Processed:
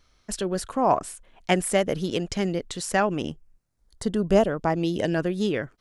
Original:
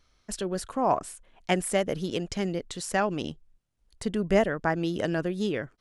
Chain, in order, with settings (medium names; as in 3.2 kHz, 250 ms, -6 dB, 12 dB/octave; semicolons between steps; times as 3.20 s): 3.01–5.15 s: peaking EQ 4.8 kHz -> 1.2 kHz -13 dB 0.37 oct; trim +3.5 dB